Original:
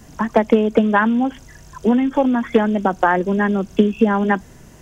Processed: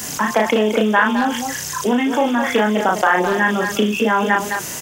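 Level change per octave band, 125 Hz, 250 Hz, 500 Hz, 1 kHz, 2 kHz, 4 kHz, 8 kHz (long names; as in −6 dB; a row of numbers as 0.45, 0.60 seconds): −3.0 dB, −2.5 dB, 0.0 dB, +2.5 dB, +5.5 dB, +11.0 dB, can't be measured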